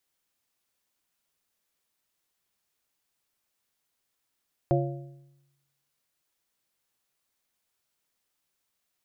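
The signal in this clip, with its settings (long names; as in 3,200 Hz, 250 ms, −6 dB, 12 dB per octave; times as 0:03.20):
struck metal plate, lowest mode 139 Hz, modes 4, decay 1.00 s, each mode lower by 1.5 dB, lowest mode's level −21.5 dB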